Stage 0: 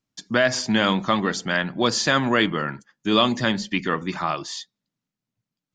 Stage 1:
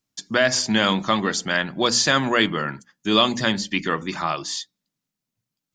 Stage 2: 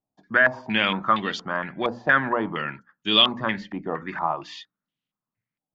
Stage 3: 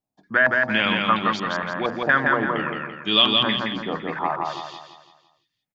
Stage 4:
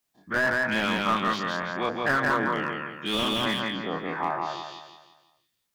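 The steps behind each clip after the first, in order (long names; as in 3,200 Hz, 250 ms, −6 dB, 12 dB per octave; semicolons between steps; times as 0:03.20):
high-shelf EQ 4,500 Hz +8 dB; mains-hum notches 60/120/180/240/300 Hz
low-pass on a step sequencer 4.3 Hz 750–3,100 Hz; level −6 dB
repeating echo 169 ms, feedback 43%, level −3 dB
every bin's largest magnitude spread in time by 60 ms; bit-depth reduction 12 bits, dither triangular; slew-rate limiting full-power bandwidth 300 Hz; level −7 dB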